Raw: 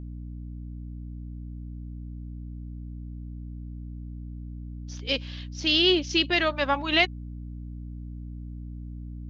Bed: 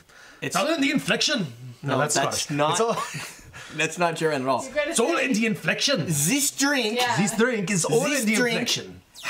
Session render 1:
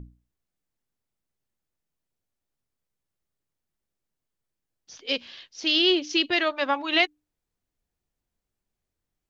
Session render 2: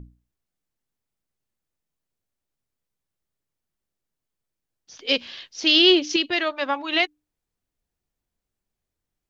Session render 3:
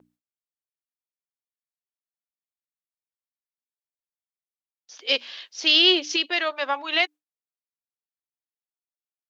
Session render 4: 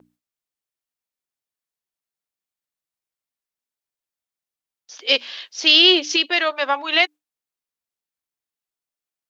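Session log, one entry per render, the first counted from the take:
mains-hum notches 60/120/180/240/300 Hz
0:04.99–0:06.16: clip gain +5.5 dB
noise gate with hold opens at −42 dBFS; high-pass filter 480 Hz 12 dB per octave
level +5 dB; brickwall limiter −1 dBFS, peak gain reduction 1.5 dB

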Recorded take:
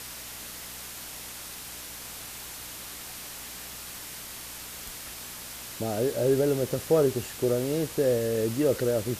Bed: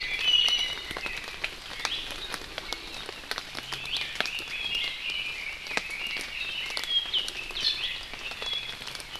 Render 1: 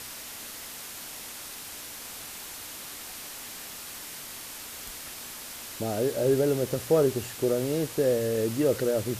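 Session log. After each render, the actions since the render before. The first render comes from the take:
hum removal 60 Hz, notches 3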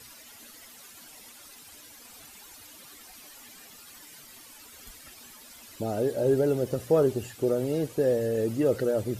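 broadband denoise 13 dB, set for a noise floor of −41 dBFS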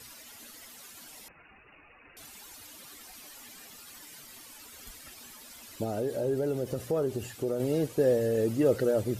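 0:01.28–0:02.17: voice inversion scrambler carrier 2,800 Hz
0:05.84–0:07.60: downward compressor 2 to 1, threshold −30 dBFS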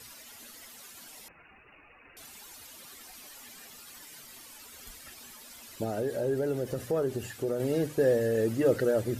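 mains-hum notches 50/100/150/200/250/300 Hz
dynamic equaliser 1,700 Hz, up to +6 dB, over −57 dBFS, Q 2.9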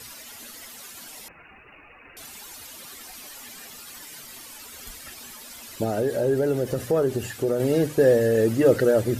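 level +7 dB

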